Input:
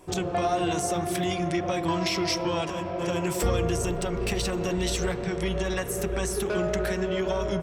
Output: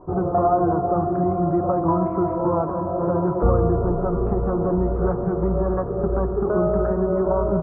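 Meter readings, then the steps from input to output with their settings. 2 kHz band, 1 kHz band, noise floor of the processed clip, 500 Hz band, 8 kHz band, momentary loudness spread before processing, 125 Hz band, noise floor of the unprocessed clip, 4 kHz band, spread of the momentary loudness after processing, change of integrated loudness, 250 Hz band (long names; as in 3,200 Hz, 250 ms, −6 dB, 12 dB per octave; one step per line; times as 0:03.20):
−10.0 dB, +7.0 dB, −26 dBFS, +7.0 dB, below −40 dB, 3 LU, +7.0 dB, −32 dBFS, below −40 dB, 4 LU, +6.0 dB, +7.0 dB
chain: Chebyshev low-pass filter 1,300 Hz, order 5
level +7.5 dB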